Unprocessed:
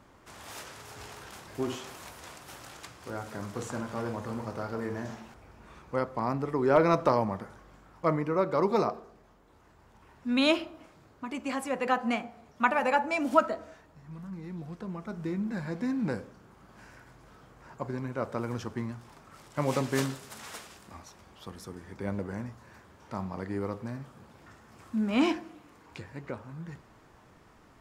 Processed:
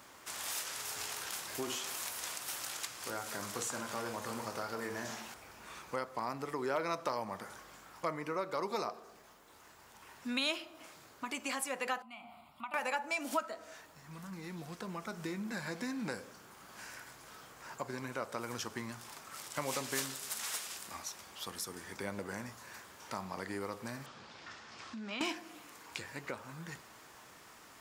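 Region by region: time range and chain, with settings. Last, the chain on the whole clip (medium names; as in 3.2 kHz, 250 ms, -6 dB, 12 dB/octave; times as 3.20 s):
12.02–12.74 s: compression 3:1, threshold -43 dBFS + treble shelf 3.7 kHz -7 dB + static phaser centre 1.7 kHz, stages 6
24.06–25.21 s: treble shelf 3.4 kHz +6.5 dB + compression 4:1, threshold -38 dBFS + low-pass 5.1 kHz 24 dB/octave
whole clip: tilt EQ +3.5 dB/octave; compression 2.5:1, threshold -40 dBFS; trim +2.5 dB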